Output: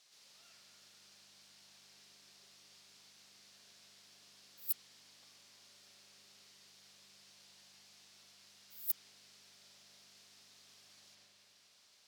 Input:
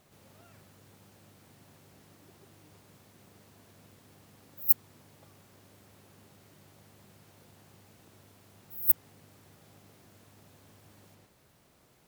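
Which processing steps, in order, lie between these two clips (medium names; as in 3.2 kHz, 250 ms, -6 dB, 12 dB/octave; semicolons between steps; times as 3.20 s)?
band-pass filter 4.9 kHz, Q 2.1; spring tank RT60 3.4 s, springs 35/40/47 ms, chirp 70 ms, DRR 1 dB; trim +8.5 dB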